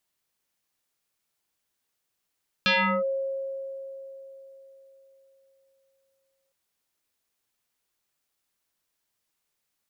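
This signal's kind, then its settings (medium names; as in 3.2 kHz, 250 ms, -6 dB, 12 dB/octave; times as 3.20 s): FM tone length 3.86 s, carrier 541 Hz, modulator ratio 1.36, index 5.1, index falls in 0.37 s linear, decay 3.98 s, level -18 dB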